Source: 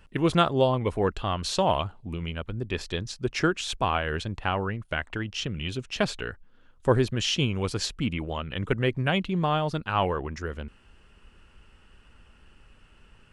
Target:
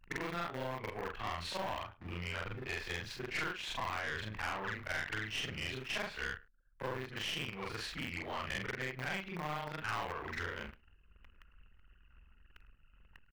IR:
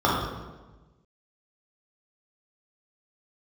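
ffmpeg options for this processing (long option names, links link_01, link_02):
-filter_complex "[0:a]afftfilt=real='re':imag='-im':win_size=4096:overlap=0.75,asplit=2[link_01][link_02];[link_02]acrusher=bits=5:dc=4:mix=0:aa=0.000001,volume=-5dB[link_03];[link_01][link_03]amix=inputs=2:normalize=0,acompressor=threshold=-34dB:ratio=20,anlmdn=0.0001,equalizer=frequency=125:width_type=o:width=1:gain=-4,equalizer=frequency=250:width_type=o:width=1:gain=-3,equalizer=frequency=1000:width_type=o:width=1:gain=4,equalizer=frequency=2000:width_type=o:width=1:gain=12,equalizer=frequency=8000:width_type=o:width=1:gain=-11,asplit=2[link_04][link_05];[link_05]aecho=0:1:105:0.0631[link_06];[link_04][link_06]amix=inputs=2:normalize=0,aeval=exprs='(tanh(39.8*val(0)+0.55)-tanh(0.55))/39.8':channel_layout=same,volume=1dB"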